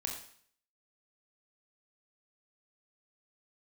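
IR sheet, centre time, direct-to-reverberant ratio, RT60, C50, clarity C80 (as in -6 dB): 30 ms, 0.5 dB, 0.55 s, 5.0 dB, 8.5 dB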